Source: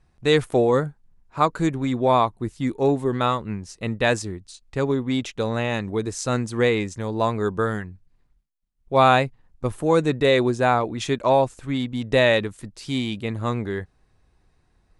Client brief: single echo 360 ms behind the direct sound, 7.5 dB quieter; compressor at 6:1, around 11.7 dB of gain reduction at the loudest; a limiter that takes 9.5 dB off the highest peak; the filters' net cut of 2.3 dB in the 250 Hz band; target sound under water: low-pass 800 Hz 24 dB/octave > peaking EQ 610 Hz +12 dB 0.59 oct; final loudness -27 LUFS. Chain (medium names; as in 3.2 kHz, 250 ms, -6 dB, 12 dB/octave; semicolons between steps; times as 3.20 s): peaking EQ 250 Hz -4 dB; compression 6:1, threshold -26 dBFS; peak limiter -24 dBFS; low-pass 800 Hz 24 dB/octave; peaking EQ 610 Hz +12 dB 0.59 oct; delay 360 ms -7.5 dB; trim +4 dB